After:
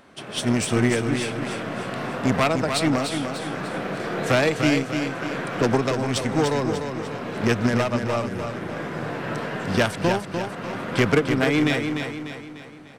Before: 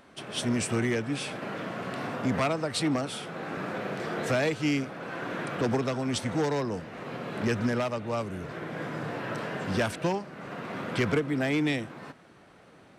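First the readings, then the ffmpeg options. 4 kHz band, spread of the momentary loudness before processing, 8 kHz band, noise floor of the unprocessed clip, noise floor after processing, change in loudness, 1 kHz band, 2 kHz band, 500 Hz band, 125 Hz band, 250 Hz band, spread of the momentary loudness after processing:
+7.0 dB, 9 LU, +6.0 dB, −55 dBFS, −39 dBFS, +6.5 dB, +7.0 dB, +7.0 dB, +6.5 dB, +6.5 dB, +6.5 dB, 10 LU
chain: -af "aeval=exprs='0.158*(cos(1*acos(clip(val(0)/0.158,-1,1)))-cos(1*PI/2))+0.00891*(cos(2*acos(clip(val(0)/0.158,-1,1)))-cos(2*PI/2))+0.0251*(cos(3*acos(clip(val(0)/0.158,-1,1)))-cos(3*PI/2))+0.00562*(cos(4*acos(clip(val(0)/0.158,-1,1)))-cos(4*PI/2))':channel_layout=same,aecho=1:1:297|594|891|1188|1485|1782:0.473|0.222|0.105|0.0491|0.0231|0.0109,volume=9dB"

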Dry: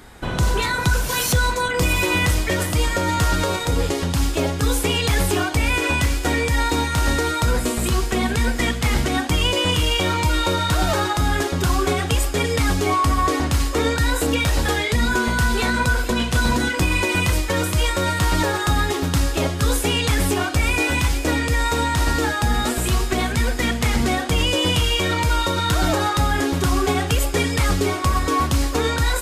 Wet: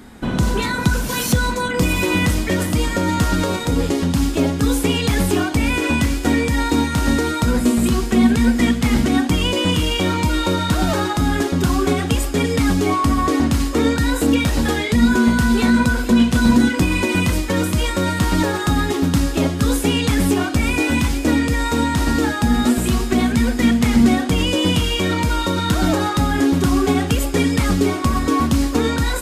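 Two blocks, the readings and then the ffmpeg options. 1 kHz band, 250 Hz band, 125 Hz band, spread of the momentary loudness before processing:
−0.5 dB, +8.5 dB, +1.0 dB, 2 LU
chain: -af "equalizer=frequency=230:width_type=o:width=0.84:gain=13,volume=-1dB"

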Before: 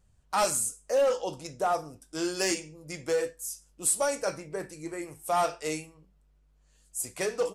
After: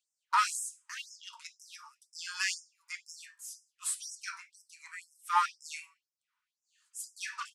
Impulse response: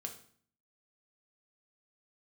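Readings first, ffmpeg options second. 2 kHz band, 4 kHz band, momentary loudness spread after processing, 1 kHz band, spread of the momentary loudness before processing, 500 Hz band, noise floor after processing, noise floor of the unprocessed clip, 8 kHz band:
−0.5 dB, −2.5 dB, 20 LU, −2.0 dB, 13 LU, below −40 dB, below −85 dBFS, −64 dBFS, −7.5 dB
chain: -af "aemphasis=mode=reproduction:type=75fm,aeval=exprs='0.133*(cos(1*acos(clip(val(0)/0.133,-1,1)))-cos(1*PI/2))+0.00473*(cos(4*acos(clip(val(0)/0.133,-1,1)))-cos(4*PI/2))+0.00266*(cos(6*acos(clip(val(0)/0.133,-1,1)))-cos(6*PI/2))+0.00106*(cos(7*acos(clip(val(0)/0.133,-1,1)))-cos(7*PI/2))':channel_layout=same,afftfilt=real='re*gte(b*sr/1024,850*pow(5100/850,0.5+0.5*sin(2*PI*2*pts/sr)))':imag='im*gte(b*sr/1024,850*pow(5100/850,0.5+0.5*sin(2*PI*2*pts/sr)))':win_size=1024:overlap=0.75,volume=4.5dB"

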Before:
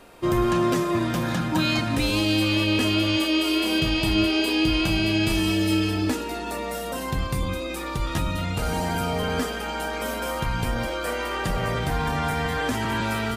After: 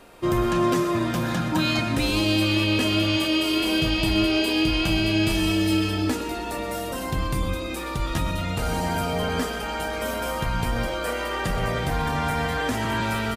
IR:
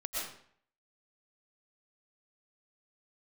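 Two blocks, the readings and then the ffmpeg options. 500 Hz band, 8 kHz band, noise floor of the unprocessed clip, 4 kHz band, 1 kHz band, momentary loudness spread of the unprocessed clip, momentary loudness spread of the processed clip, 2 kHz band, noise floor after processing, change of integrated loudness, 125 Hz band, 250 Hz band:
+0.5 dB, 0.0 dB, −31 dBFS, +0.5 dB, +0.5 dB, 8 LU, 7 LU, 0.0 dB, −31 dBFS, 0.0 dB, 0.0 dB, 0.0 dB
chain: -filter_complex "[0:a]asplit=2[link_01][link_02];[link_02]adelay=1633,volume=-17dB,highshelf=frequency=4000:gain=-36.7[link_03];[link_01][link_03]amix=inputs=2:normalize=0,asplit=2[link_04][link_05];[1:a]atrim=start_sample=2205,atrim=end_sample=6174[link_06];[link_05][link_06]afir=irnorm=-1:irlink=0,volume=-9dB[link_07];[link_04][link_07]amix=inputs=2:normalize=0,volume=-2dB"

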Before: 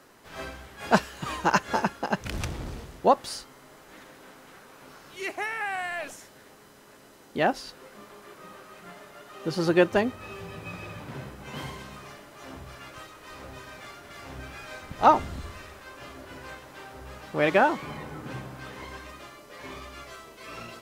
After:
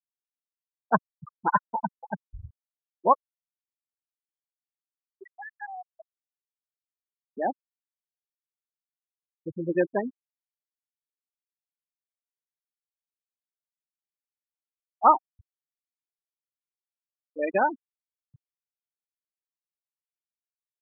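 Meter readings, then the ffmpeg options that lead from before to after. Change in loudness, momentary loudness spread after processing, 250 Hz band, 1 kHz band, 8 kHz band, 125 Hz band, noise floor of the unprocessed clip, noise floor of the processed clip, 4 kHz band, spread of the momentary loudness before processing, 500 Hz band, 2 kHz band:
+1.5 dB, 22 LU, −5.5 dB, 0.0 dB, below −35 dB, −9.0 dB, −53 dBFS, below −85 dBFS, below −40 dB, 22 LU, −4.0 dB, −7.0 dB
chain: -af "afftfilt=real='re*gte(hypot(re,im),0.251)':imag='im*gte(hypot(re,im),0.251)':win_size=1024:overlap=0.75,equalizer=frequency=1100:width_type=o:width=0.48:gain=10.5,volume=-4dB"

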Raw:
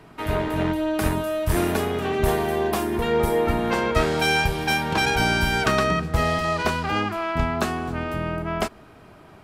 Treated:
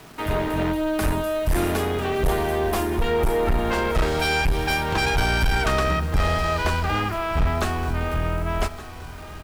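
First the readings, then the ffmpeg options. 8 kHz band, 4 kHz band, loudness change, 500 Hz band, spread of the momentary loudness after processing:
−0.5 dB, −1.0 dB, 0.0 dB, −0.5 dB, 5 LU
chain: -af "asubboost=boost=7:cutoff=66,acrusher=bits=7:mix=0:aa=0.000001,asoftclip=type=tanh:threshold=-17.5dB,aecho=1:1:1170|2340|3510|4680:0.158|0.0777|0.0381|0.0186,volume=2dB"

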